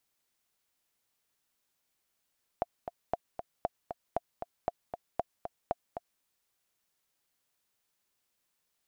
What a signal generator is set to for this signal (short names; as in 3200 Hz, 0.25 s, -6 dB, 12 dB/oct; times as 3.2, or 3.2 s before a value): metronome 233 bpm, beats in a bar 2, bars 7, 695 Hz, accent 8 dB -16 dBFS